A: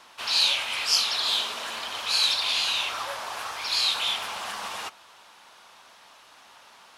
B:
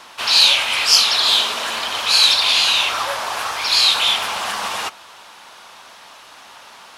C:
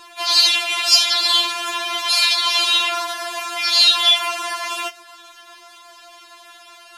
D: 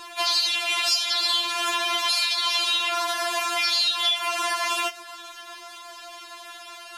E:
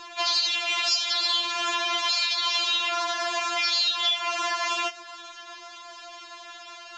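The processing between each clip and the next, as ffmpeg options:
ffmpeg -i in.wav -af "acontrast=58,volume=4dB" out.wav
ffmpeg -i in.wav -af "afftfilt=real='re*4*eq(mod(b,16),0)':imag='im*4*eq(mod(b,16),0)':win_size=2048:overlap=0.75,volume=1dB" out.wav
ffmpeg -i in.wav -af "acompressor=threshold=-24dB:ratio=5,volume=2.5dB" out.wav
ffmpeg -i in.wav -af "aresample=16000,aresample=44100,volume=-1.5dB" out.wav

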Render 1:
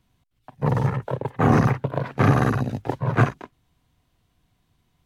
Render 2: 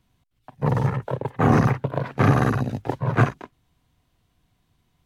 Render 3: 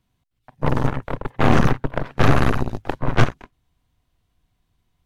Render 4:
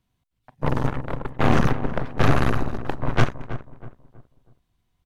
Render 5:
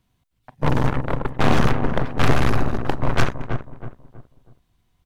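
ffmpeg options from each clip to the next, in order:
ffmpeg -i in.wav -af anull out.wav
ffmpeg -i in.wav -af "aeval=exprs='0.596*(cos(1*acos(clip(val(0)/0.596,-1,1)))-cos(1*PI/2))+0.0376*(cos(7*acos(clip(val(0)/0.596,-1,1)))-cos(7*PI/2))+0.0944*(cos(8*acos(clip(val(0)/0.596,-1,1)))-cos(8*PI/2))':channel_layout=same,asubboost=boost=2:cutoff=85,volume=1dB" out.wav
ffmpeg -i in.wav -filter_complex "[0:a]asplit=2[link_01][link_02];[link_02]adelay=322,lowpass=frequency=1300:poles=1,volume=-11.5dB,asplit=2[link_03][link_04];[link_04]adelay=322,lowpass=frequency=1300:poles=1,volume=0.37,asplit=2[link_05][link_06];[link_06]adelay=322,lowpass=frequency=1300:poles=1,volume=0.37,asplit=2[link_07][link_08];[link_08]adelay=322,lowpass=frequency=1300:poles=1,volume=0.37[link_09];[link_01][link_03][link_05][link_07][link_09]amix=inputs=5:normalize=0,volume=-3dB" out.wav
ffmpeg -i in.wav -af "asoftclip=type=hard:threshold=-14dB,volume=5.5dB" out.wav

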